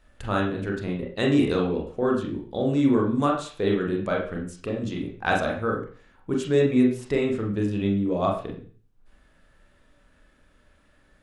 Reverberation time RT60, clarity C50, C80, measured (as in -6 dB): 0.40 s, 6.5 dB, 10.0 dB